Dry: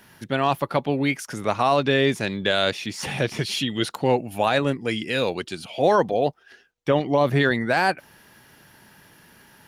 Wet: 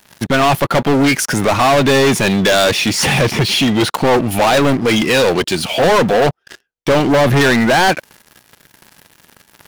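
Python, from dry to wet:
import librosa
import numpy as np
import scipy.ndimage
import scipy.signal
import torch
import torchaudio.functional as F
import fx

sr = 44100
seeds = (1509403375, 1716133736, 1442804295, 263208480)

y = fx.high_shelf(x, sr, hz=3900.0, db=-10.0, at=(3.31, 3.91))
y = fx.leveller(y, sr, passes=5)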